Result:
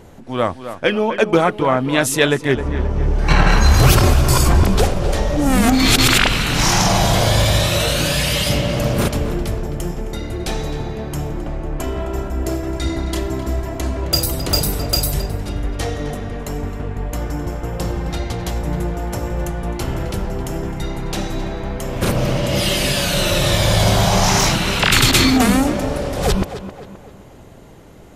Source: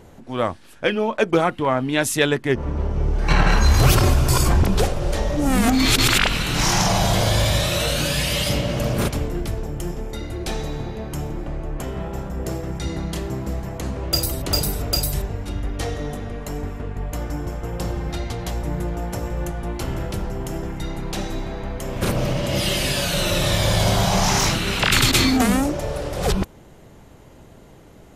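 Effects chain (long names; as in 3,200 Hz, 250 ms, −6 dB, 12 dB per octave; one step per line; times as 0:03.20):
0:11.79–0:14.05: comb filter 3 ms, depth 63%
tape delay 263 ms, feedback 48%, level −10 dB, low-pass 2,900 Hz
level +3.5 dB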